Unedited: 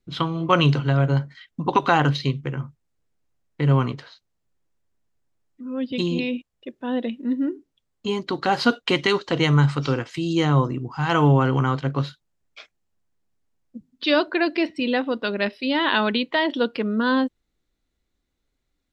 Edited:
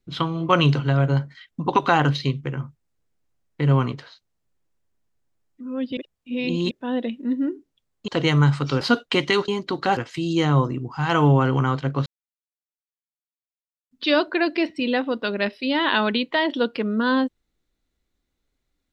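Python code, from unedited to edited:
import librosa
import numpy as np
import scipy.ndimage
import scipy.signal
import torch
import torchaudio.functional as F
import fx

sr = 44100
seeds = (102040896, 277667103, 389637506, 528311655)

y = fx.edit(x, sr, fx.reverse_span(start_s=5.97, length_s=0.74),
    fx.swap(start_s=8.08, length_s=0.49, other_s=9.24, other_length_s=0.73),
    fx.silence(start_s=12.06, length_s=1.85), tone=tone)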